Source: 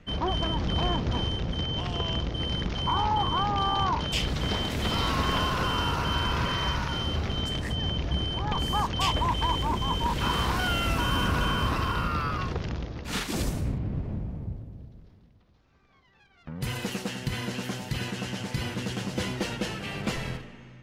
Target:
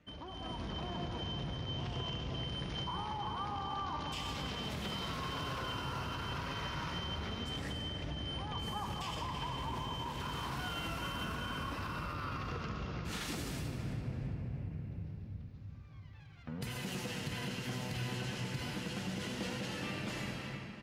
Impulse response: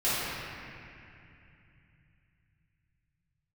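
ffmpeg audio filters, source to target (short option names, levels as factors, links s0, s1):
-filter_complex "[0:a]asplit=2[s0][s1];[s1]highshelf=f=3700:g=10[s2];[1:a]atrim=start_sample=2205,adelay=76[s3];[s2][s3]afir=irnorm=-1:irlink=0,volume=0.119[s4];[s0][s4]amix=inputs=2:normalize=0,alimiter=limit=0.0891:level=0:latency=1:release=43,highpass=58,acompressor=threshold=0.02:ratio=4,flanger=delay=3.3:depth=4.7:regen=69:speed=0.25:shape=sinusoidal,dynaudnorm=f=120:g=7:m=2.51,asplit=2[s5][s6];[s6]adelay=334,lowpass=f=4800:p=1,volume=0.355,asplit=2[s7][s8];[s8]adelay=334,lowpass=f=4800:p=1,volume=0.42,asplit=2[s9][s10];[s10]adelay=334,lowpass=f=4800:p=1,volume=0.42,asplit=2[s11][s12];[s12]adelay=334,lowpass=f=4800:p=1,volume=0.42,asplit=2[s13][s14];[s14]adelay=334,lowpass=f=4800:p=1,volume=0.42[s15];[s5][s7][s9][s11][s13][s15]amix=inputs=6:normalize=0,volume=0.447"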